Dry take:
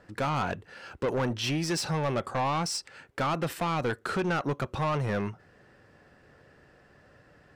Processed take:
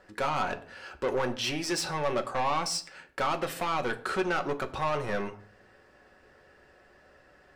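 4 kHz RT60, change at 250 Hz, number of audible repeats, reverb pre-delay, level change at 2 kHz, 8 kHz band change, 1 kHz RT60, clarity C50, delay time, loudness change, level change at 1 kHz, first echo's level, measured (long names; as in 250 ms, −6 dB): 0.35 s, −4.0 dB, no echo audible, 5 ms, +1.0 dB, +0.5 dB, 0.45 s, 16.0 dB, no echo audible, −0.5 dB, +0.5 dB, no echo audible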